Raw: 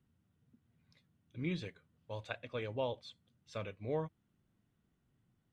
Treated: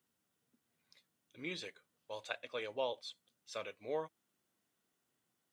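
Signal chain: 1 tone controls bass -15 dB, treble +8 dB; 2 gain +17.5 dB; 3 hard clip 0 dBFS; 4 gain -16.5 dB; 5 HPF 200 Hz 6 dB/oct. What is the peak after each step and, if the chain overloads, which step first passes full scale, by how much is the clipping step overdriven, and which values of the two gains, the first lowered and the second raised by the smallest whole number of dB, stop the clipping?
-22.5, -5.0, -5.0, -21.5, -22.0 dBFS; no overload

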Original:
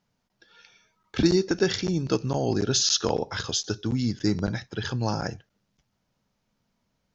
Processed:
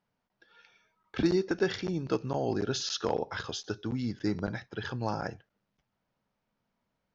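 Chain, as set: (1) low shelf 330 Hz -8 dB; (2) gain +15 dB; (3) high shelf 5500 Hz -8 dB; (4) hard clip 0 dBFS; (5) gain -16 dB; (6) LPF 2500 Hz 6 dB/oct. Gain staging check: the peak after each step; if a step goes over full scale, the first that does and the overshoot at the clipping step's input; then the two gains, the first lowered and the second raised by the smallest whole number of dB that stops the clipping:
-11.0, +4.0, +3.5, 0.0, -16.0, -16.0 dBFS; step 2, 3.5 dB; step 2 +11 dB, step 5 -12 dB

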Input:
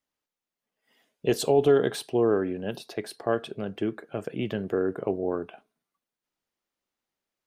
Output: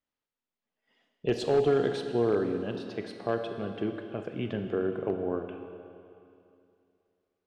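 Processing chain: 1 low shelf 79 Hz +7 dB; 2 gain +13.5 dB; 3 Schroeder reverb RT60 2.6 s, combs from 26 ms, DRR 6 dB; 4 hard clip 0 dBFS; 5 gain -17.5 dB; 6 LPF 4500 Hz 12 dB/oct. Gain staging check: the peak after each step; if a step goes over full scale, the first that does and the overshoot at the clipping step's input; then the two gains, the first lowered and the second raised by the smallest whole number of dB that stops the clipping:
-11.0, +2.5, +4.5, 0.0, -17.5, -17.5 dBFS; step 2, 4.5 dB; step 2 +8.5 dB, step 5 -12.5 dB

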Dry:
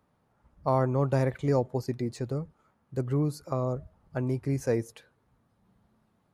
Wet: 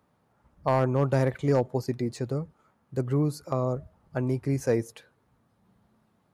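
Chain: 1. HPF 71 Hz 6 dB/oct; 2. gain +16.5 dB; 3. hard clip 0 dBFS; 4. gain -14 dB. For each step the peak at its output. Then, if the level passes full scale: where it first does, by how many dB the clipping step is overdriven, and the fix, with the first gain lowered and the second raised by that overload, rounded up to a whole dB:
-12.5, +4.0, 0.0, -14.0 dBFS; step 2, 4.0 dB; step 2 +12.5 dB, step 4 -10 dB

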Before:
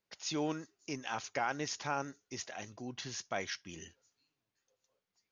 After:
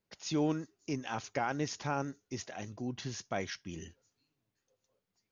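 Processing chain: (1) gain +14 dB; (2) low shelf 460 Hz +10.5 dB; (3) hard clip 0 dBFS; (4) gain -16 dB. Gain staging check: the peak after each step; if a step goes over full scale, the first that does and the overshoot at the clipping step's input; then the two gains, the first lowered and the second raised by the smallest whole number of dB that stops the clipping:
-6.5, -4.0, -4.0, -20.0 dBFS; no overload

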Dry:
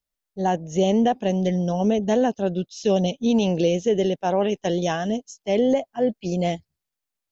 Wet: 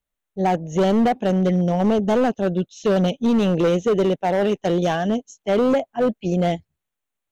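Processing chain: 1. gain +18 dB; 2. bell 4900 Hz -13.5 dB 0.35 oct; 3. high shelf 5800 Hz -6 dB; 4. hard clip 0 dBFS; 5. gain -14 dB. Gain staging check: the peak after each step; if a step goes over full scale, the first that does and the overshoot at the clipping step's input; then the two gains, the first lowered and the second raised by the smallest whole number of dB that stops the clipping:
+7.5, +7.5, +7.5, 0.0, -14.0 dBFS; step 1, 7.5 dB; step 1 +10 dB, step 5 -6 dB

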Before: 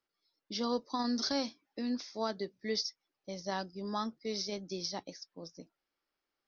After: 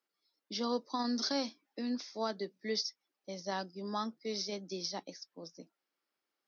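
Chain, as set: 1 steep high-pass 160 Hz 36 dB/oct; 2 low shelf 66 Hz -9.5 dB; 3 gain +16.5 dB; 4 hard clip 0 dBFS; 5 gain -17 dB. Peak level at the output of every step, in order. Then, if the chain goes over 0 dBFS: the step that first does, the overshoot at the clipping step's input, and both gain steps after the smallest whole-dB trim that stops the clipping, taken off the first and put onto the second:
-20.5, -20.5, -4.0, -4.0, -21.0 dBFS; no overload

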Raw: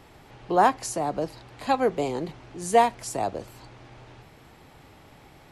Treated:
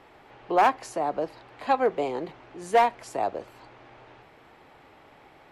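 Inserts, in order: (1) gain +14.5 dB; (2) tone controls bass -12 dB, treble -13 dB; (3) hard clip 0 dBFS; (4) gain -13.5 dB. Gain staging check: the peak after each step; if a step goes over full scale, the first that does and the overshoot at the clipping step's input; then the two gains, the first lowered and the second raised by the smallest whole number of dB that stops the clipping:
+7.5, +6.5, 0.0, -13.5 dBFS; step 1, 6.5 dB; step 1 +7.5 dB, step 4 -6.5 dB

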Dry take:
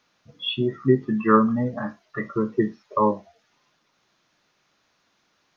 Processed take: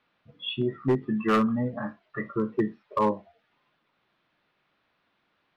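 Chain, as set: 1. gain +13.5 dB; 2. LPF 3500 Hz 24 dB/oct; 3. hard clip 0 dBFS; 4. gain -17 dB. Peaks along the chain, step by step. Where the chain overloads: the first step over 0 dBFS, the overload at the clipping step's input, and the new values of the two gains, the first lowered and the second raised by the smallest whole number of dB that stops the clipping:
+9.5, +9.5, 0.0, -17.0 dBFS; step 1, 9.5 dB; step 1 +3.5 dB, step 4 -7 dB

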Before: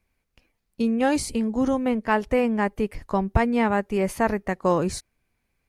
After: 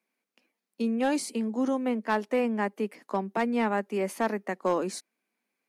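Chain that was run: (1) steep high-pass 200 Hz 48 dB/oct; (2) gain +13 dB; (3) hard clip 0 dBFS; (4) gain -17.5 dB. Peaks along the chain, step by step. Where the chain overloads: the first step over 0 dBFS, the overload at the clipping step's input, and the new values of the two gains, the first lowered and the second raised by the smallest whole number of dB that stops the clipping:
-9.0, +4.0, 0.0, -17.5 dBFS; step 2, 4.0 dB; step 2 +9 dB, step 4 -13.5 dB

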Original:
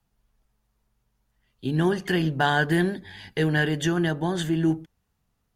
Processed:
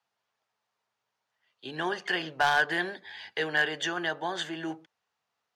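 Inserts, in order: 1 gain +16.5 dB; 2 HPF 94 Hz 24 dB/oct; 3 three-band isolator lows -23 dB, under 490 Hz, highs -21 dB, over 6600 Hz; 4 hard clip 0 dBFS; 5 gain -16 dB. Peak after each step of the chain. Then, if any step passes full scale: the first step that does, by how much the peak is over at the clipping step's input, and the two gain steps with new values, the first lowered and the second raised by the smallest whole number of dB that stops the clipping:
+7.5, +8.0, +7.0, 0.0, -16.0 dBFS; step 1, 7.0 dB; step 1 +9.5 dB, step 5 -9 dB

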